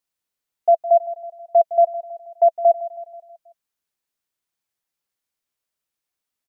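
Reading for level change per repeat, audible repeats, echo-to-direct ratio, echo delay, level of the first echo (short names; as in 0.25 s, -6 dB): -5.5 dB, 4, -13.5 dB, 0.161 s, -15.0 dB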